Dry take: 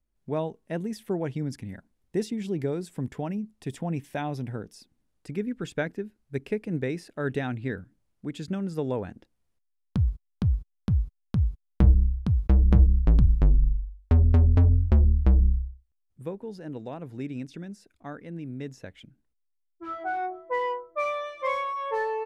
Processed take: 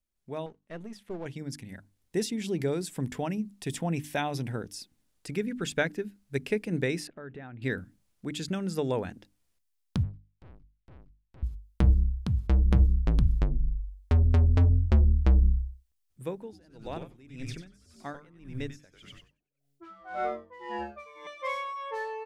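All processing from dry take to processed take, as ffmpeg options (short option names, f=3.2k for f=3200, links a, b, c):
-filter_complex "[0:a]asettb=1/sr,asplit=3[a][b][c];[a]atrim=end=0.464[d];[b]atrim=start=0.46:end=1.26,asetpts=PTS-STARTPTS,afade=t=in:d=0.004:c=qsin,afade=t=out:st=0.796:d=0.004:c=qsin,aeval=exprs='if(lt(val(0),0),0.447*val(0),val(0))':c=same,aemphasis=mode=reproduction:type=50fm[e];[c]atrim=start=1.256[f];[d][e]acrossfade=d=0.004:c1=hsin:c2=qsin[g];[g][f]acrossfade=d=0.004:c1=qsin:c2=hsin,asettb=1/sr,asplit=3[h][i][j];[h]atrim=end=7.074[k];[i]atrim=start=7.07:end=7.62,asetpts=PTS-STARTPTS,afade=t=in:d=0.004:c=qsin,afade=t=out:st=0.546:d=0.004:c=qsin,lowpass=1.7k,acompressor=threshold=-44dB:ratio=3:attack=3.2:release=140:knee=1:detection=peak[l];[j]atrim=start=7.616[m];[k][l]acrossfade=d=0.004:c1=hsin:c2=qsin[n];[n][m]acrossfade=d=0.004:c1=qsin:c2=hsin,asettb=1/sr,asplit=3[o][p][q];[o]atrim=end=10.034[r];[p]atrim=start=10.03:end=11.43,asetpts=PTS-STARTPTS,afade=t=in:d=0.004:c=qsin,afade=t=out:st=1.396:d=0.004:c=qsin,lowpass=2.8k,equalizer=f=210:t=o:w=1.8:g=-14.5,aeval=exprs='(tanh(224*val(0)+0.6)-tanh(0.6))/224':c=same[s];[q]atrim=start=11.426[t];[r][s]acrossfade=d=0.004:c1=hsin:c2=qsin[u];[u][t]acrossfade=d=0.004:c1=qsin:c2=hsin,asettb=1/sr,asplit=3[v][w][x];[v]atrim=end=16.384[y];[w]atrim=start=16.38:end=21.27,asetpts=PTS-STARTPTS,afade=t=in:d=0.004:c=qsin,afade=t=out:st=4.886:d=0.004:c=qsin,asplit=7[z][aa][ab][ac][ad][ae][af];[aa]adelay=94,afreqshift=-140,volume=-3.5dB[ag];[ab]adelay=188,afreqshift=-280,volume=-10.6dB[ah];[ac]adelay=282,afreqshift=-420,volume=-17.8dB[ai];[ad]adelay=376,afreqshift=-560,volume=-24.9dB[aj];[ae]adelay=470,afreqshift=-700,volume=-32dB[ak];[af]adelay=564,afreqshift=-840,volume=-39.2dB[al];[z][ag][ah][ai][aj][ak][al]amix=inputs=7:normalize=0,atrim=end_sample=215649,aeval=exprs='val(0)*pow(10,-21*(0.5-0.5*cos(2*PI*1.8*n/s))/20)':c=same[am];[x]atrim=start=21.266[an];[y][am]acrossfade=d=0.004:c1=hsin:c2=qsin[ao];[ao][an]acrossfade=d=0.004:c1=qsin:c2=hsin,highshelf=f=2k:g=9.5,bandreject=f=50:t=h:w=6,bandreject=f=100:t=h:w=6,bandreject=f=150:t=h:w=6,bandreject=f=200:t=h:w=6,bandreject=f=250:t=h:w=6,bandreject=f=300:t=h:w=6,dynaudnorm=f=230:g=17:m=8.5dB,volume=-8dB"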